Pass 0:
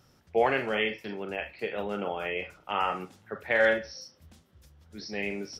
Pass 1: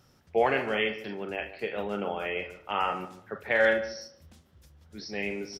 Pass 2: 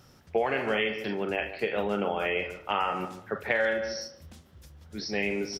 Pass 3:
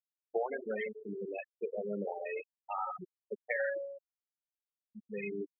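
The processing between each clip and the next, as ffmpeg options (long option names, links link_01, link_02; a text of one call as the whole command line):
ffmpeg -i in.wav -filter_complex "[0:a]asplit=2[link_01][link_02];[link_02]adelay=147,lowpass=frequency=1700:poles=1,volume=-12.5dB,asplit=2[link_03][link_04];[link_04]adelay=147,lowpass=frequency=1700:poles=1,volume=0.25,asplit=2[link_05][link_06];[link_06]adelay=147,lowpass=frequency=1700:poles=1,volume=0.25[link_07];[link_01][link_03][link_05][link_07]amix=inputs=4:normalize=0" out.wav
ffmpeg -i in.wav -af "acompressor=threshold=-29dB:ratio=5,volume=5.5dB" out.wav
ffmpeg -i in.wav -af "afftfilt=real='re*gte(hypot(re,im),0.141)':imag='im*gte(hypot(re,im),0.141)':win_size=1024:overlap=0.75,volume=-6.5dB" out.wav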